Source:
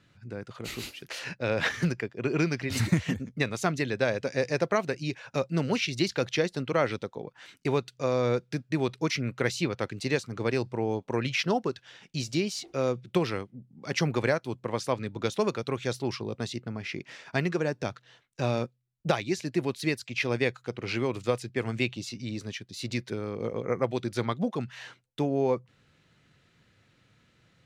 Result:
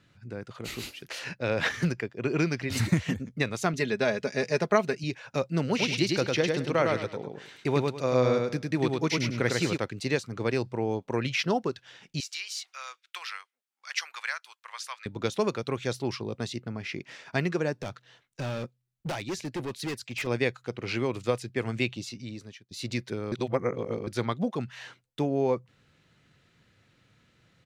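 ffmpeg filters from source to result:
-filter_complex "[0:a]asettb=1/sr,asplit=3[s0][s1][s2];[s0]atrim=end=3.734[s3];[s1]atrim=start=3.73:end=5.04,asetpts=PTS-STARTPTS,afade=t=in:d=0.004:c=qsin,afade=t=out:st=1.306:d=0.004:c=qsin,aecho=1:1:4.8:0.6,atrim=end_sample=57771[s4];[s2]atrim=start=5.036[s5];[s3][s4]acrossfade=d=0.004:c1=hsin:c2=qsin[s6];[s6][s5]acrossfade=d=0.004:c1=qsin:c2=hsin,asplit=3[s7][s8][s9];[s7]afade=t=out:st=5.78:d=0.02[s10];[s8]aecho=1:1:103|206|309|412:0.708|0.184|0.0479|0.0124,afade=t=in:st=5.78:d=0.02,afade=t=out:st=9.76:d=0.02[s11];[s9]afade=t=in:st=9.76:d=0.02[s12];[s10][s11][s12]amix=inputs=3:normalize=0,asettb=1/sr,asplit=3[s13][s14][s15];[s13]atrim=end=12.204[s16];[s14]atrim=start=12.2:end=15.06,asetpts=PTS-STARTPTS,afade=t=in:d=0.004:c=qsin,afade=t=out:st=2.856:d=0.004:c=qsin,highpass=f=1200:w=0.5412,highpass=f=1200:w=1.3066[s17];[s15]atrim=start=15.056[s18];[s16][s17]acrossfade=d=0.004:c1=hsin:c2=qsin[s19];[s19][s18]acrossfade=d=0.004:c1=qsin:c2=hsin,asettb=1/sr,asplit=3[s20][s21][s22];[s20]atrim=end=17.824[s23];[s21]atrim=start=17.82:end=20.27,asetpts=PTS-STARTPTS,afade=t=in:d=0.004:c=qsin,afade=t=out:st=2.446:d=0.004:c=qsin,asoftclip=type=hard:threshold=0.0355[s24];[s22]atrim=start=20.266[s25];[s23][s24]acrossfade=d=0.004:c1=hsin:c2=qsin[s26];[s26][s25]acrossfade=d=0.004:c1=qsin:c2=hsin,asplit=4[s27][s28][s29][s30];[s27]atrim=end=22.71,asetpts=PTS-STARTPTS,afade=t=out:st=21.99:d=0.72:silence=0.0944061[s31];[s28]atrim=start=22.71:end=23.322,asetpts=PTS-STARTPTS,afade=t=in:d=0.004:c=hsin:silence=0.0944061[s32];[s29]atrim=start=23.318:end=24.072,asetpts=PTS-STARTPTS,areverse[s33];[s30]atrim=start=24.068[s34];[s31][s32]concat=n=2:v=0:a=1[s35];[s35][s33]acrossfade=d=0.004:c1=hsin:c2=hsin[s36];[s36][s34]acrossfade=d=0.004:c1=hsin:c2=hsin"

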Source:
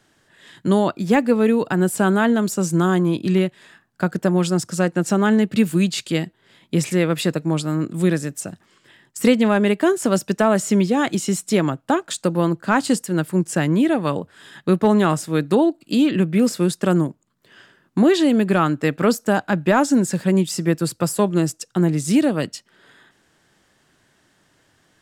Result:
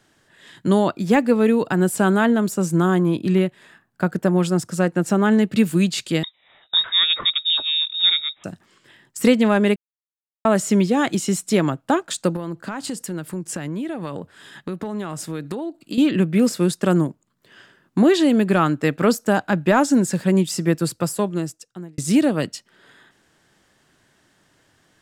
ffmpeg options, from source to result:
-filter_complex "[0:a]asettb=1/sr,asplit=3[s0][s1][s2];[s0]atrim=end=2.264[s3];[s1]atrim=start=2.26:end=5.32,asetpts=PTS-STARTPTS,afade=t=in:d=0.004:c=qsin,afade=t=out:st=3.056:d=0.004:c=qsin,equalizer=f=5300:w=0.72:g=-4.5[s4];[s2]atrim=start=5.316[s5];[s3][s4]acrossfade=d=0.004:c1=hsin:c2=qsin[s6];[s6][s5]acrossfade=d=0.004:c1=qsin:c2=hsin,asettb=1/sr,asplit=3[s7][s8][s9];[s7]atrim=end=6.234[s10];[s8]atrim=start=6.23:end=8.44,asetpts=PTS-STARTPTS,afade=t=in:d=0.004:c=qsin,afade=t=out:st=2.206:d=0.004:c=qsin,lowpass=f=3300:t=q:w=0.5098,lowpass=f=3300:t=q:w=0.6013,lowpass=f=3300:t=q:w=0.9,lowpass=f=3300:t=q:w=2.563,afreqshift=-3900[s11];[s9]atrim=start=8.436[s12];[s10][s11]acrossfade=d=0.004:c1=hsin:c2=qsin[s13];[s13][s12]acrossfade=d=0.004:c1=qsin:c2=hsin,asettb=1/sr,asplit=3[s14][s15][s16];[s14]atrim=end=12.364[s17];[s15]atrim=start=12.36:end=15.98,asetpts=PTS-STARTPTS,afade=t=in:d=0.004:c=qsin,afade=t=out:st=3.616:d=0.004:c=qsin,acompressor=threshold=0.0631:ratio=8:attack=3.2:release=140:knee=1:detection=peak[s18];[s16]atrim=start=15.976[s19];[s17][s18]acrossfade=d=0.004:c1=hsin:c2=qsin[s20];[s20][s19]acrossfade=d=0.004:c1=qsin:c2=hsin,asplit=4[s21][s22][s23][s24];[s21]atrim=end=9.76,asetpts=PTS-STARTPTS,afade=t=out:st=9.756:d=0.004:c=hsin[s25];[s22]atrim=start=9.76:end=10.45,asetpts=PTS-STARTPTS,volume=0[s26];[s23]atrim=start=10.45:end=21.98,asetpts=PTS-STARTPTS,afade=t=in:d=0.004:c=hsin,afade=t=out:st=10.38:d=1.15[s27];[s24]atrim=start=21.98,asetpts=PTS-STARTPTS,afade=t=in:d=0.004:c=hsin[s28];[s25][s26][s27][s28]concat=n=4:v=0:a=1"

